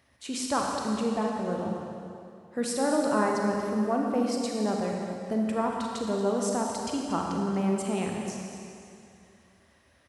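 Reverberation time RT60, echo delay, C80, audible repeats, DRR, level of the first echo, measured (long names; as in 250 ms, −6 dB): 2.5 s, 234 ms, 1.5 dB, 1, −0.5 dB, −12.5 dB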